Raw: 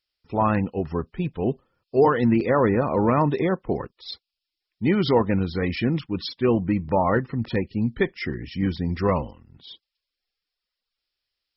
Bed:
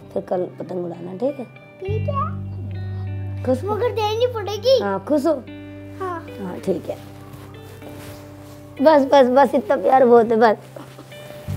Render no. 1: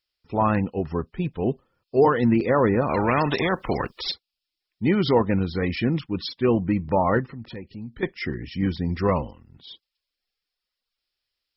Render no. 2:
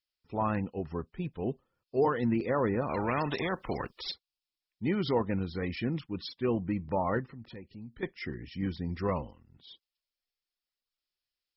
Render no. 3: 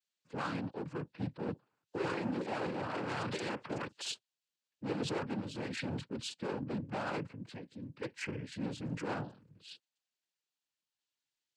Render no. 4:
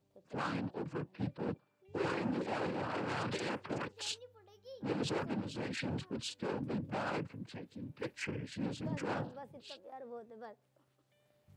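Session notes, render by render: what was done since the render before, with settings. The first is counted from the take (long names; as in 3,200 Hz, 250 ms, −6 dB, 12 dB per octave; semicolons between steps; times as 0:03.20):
0:02.89–0:04.12: every bin compressed towards the loudest bin 2 to 1; 0:07.26–0:08.03: downward compressor 2 to 1, threshold −42 dBFS
level −9 dB
hard clipping −34 dBFS, distortion −5 dB; cochlear-implant simulation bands 8
mix in bed −36 dB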